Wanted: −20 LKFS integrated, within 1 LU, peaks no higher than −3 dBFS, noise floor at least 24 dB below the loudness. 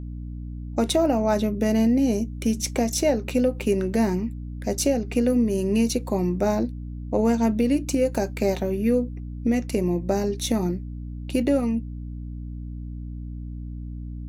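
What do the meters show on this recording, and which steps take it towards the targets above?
mains hum 60 Hz; hum harmonics up to 300 Hz; level of the hum −31 dBFS; integrated loudness −24.0 LKFS; sample peak −8.5 dBFS; target loudness −20.0 LKFS
→ hum removal 60 Hz, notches 5
level +4 dB

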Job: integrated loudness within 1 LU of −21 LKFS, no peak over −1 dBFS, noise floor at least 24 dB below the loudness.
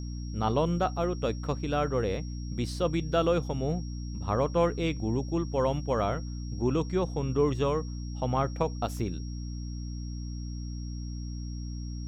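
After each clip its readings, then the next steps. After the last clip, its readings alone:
mains hum 60 Hz; hum harmonics up to 300 Hz; level of the hum −33 dBFS; interfering tone 5,600 Hz; level of the tone −50 dBFS; integrated loudness −30.5 LKFS; sample peak −13.0 dBFS; target loudness −21.0 LKFS
→ mains-hum notches 60/120/180/240/300 Hz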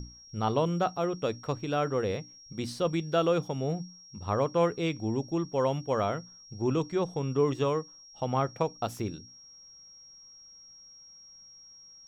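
mains hum none found; interfering tone 5,600 Hz; level of the tone −50 dBFS
→ notch filter 5,600 Hz, Q 30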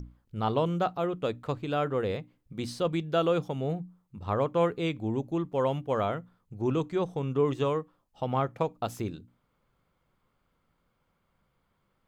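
interfering tone none found; integrated loudness −30.5 LKFS; sample peak −14.0 dBFS; target loudness −21.0 LKFS
→ level +9.5 dB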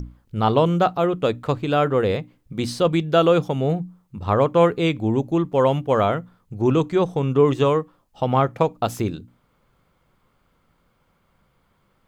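integrated loudness −21.0 LKFS; sample peak −4.5 dBFS; background noise floor −65 dBFS

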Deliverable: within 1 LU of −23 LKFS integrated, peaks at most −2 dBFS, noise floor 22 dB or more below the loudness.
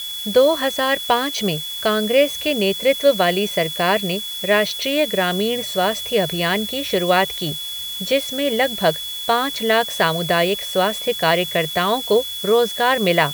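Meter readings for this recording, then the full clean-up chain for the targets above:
interfering tone 3,400 Hz; level of the tone −27 dBFS; background noise floor −29 dBFS; target noise floor −41 dBFS; integrated loudness −19.0 LKFS; sample peak −2.0 dBFS; target loudness −23.0 LKFS
→ notch filter 3,400 Hz, Q 30
noise reduction from a noise print 12 dB
level −4 dB

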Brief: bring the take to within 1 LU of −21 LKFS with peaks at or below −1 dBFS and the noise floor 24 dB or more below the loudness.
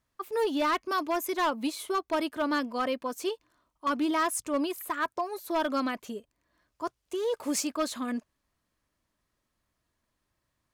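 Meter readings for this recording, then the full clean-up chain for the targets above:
share of clipped samples 1.3%; peaks flattened at −22.0 dBFS; integrated loudness −30.5 LKFS; sample peak −22.0 dBFS; target loudness −21.0 LKFS
→ clipped peaks rebuilt −22 dBFS
level +9.5 dB

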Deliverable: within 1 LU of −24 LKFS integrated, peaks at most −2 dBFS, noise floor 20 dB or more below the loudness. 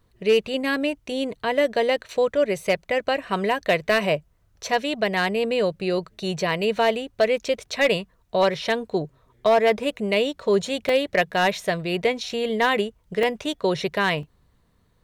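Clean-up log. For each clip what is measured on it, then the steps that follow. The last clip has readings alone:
share of clipped samples 0.3%; peaks flattened at −11.5 dBFS; number of dropouts 3; longest dropout 2.2 ms; integrated loudness −23.5 LKFS; sample peak −11.5 dBFS; target loudness −24.0 LKFS
→ clipped peaks rebuilt −11.5 dBFS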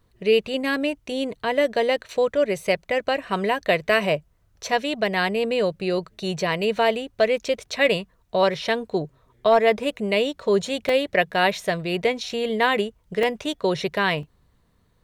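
share of clipped samples 0.0%; number of dropouts 3; longest dropout 2.2 ms
→ repair the gap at 0:10.89/0:13.23/0:14.23, 2.2 ms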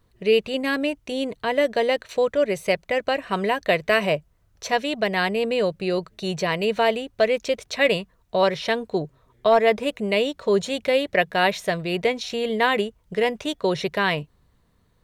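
number of dropouts 0; integrated loudness −23.0 LKFS; sample peak −5.0 dBFS; target loudness −24.0 LKFS
→ level −1 dB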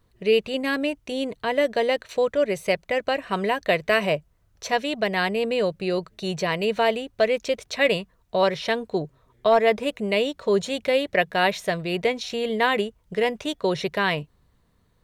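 integrated loudness −24.0 LKFS; sample peak −6.0 dBFS; background noise floor −64 dBFS

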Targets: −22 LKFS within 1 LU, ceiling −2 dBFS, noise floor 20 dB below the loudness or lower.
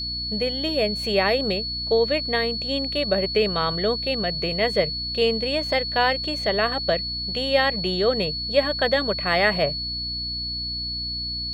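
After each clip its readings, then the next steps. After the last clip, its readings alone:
mains hum 60 Hz; hum harmonics up to 300 Hz; level of the hum −35 dBFS; interfering tone 4,400 Hz; level of the tone −27 dBFS; integrated loudness −22.5 LKFS; sample peak −6.5 dBFS; target loudness −22.0 LKFS
→ mains-hum notches 60/120/180/240/300 Hz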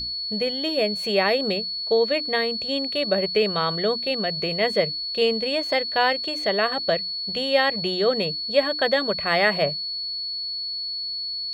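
mains hum none found; interfering tone 4,400 Hz; level of the tone −27 dBFS
→ notch filter 4,400 Hz, Q 30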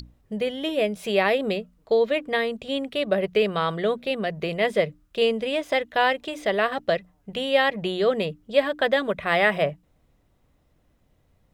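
interfering tone none found; integrated loudness −24.0 LKFS; sample peak −6.5 dBFS; target loudness −22.0 LKFS
→ level +2 dB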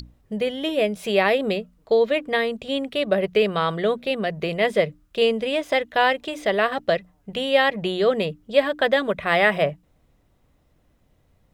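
integrated loudness −22.0 LKFS; sample peak −4.5 dBFS; background noise floor −63 dBFS

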